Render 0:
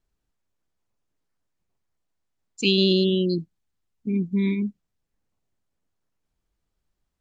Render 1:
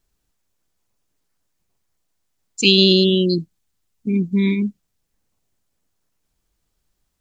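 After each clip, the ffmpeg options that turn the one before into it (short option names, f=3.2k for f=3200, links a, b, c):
-af "highshelf=f=3.9k:g=8.5,volume=5dB"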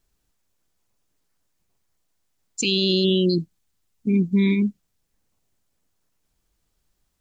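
-af "alimiter=limit=-11.5dB:level=0:latency=1:release=35"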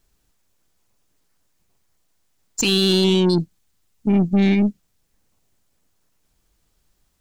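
-af "acontrast=65,aeval=exprs='(tanh(3.98*val(0)+0.3)-tanh(0.3))/3.98':c=same"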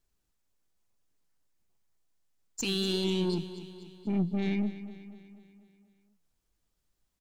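-af "flanger=delay=1.7:depth=4.4:regen=87:speed=2:shape=triangular,aecho=1:1:244|488|732|976|1220|1464:0.2|0.11|0.0604|0.0332|0.0183|0.01,volume=-8.5dB"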